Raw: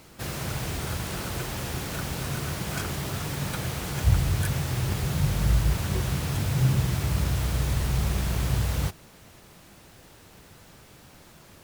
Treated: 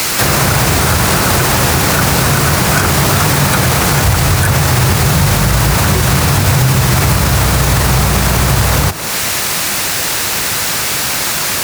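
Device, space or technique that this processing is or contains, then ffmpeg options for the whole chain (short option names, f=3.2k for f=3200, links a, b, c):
mastering chain: -filter_complex "[0:a]highpass=55,equalizer=f=3.2k:t=o:w=0.41:g=-3.5,acrossover=split=87|270|1300[a][b][c][d];[a]acompressor=threshold=-34dB:ratio=4[e];[b]acompressor=threshold=-29dB:ratio=4[f];[c]acompressor=threshold=-41dB:ratio=4[g];[d]acompressor=threshold=-52dB:ratio=4[h];[e][f][g][h]amix=inputs=4:normalize=0,acompressor=threshold=-33dB:ratio=2,tiltshelf=f=850:g=-8.5,asoftclip=type=hard:threshold=-30dB,alimiter=level_in=34dB:limit=-1dB:release=50:level=0:latency=1,volume=-1dB"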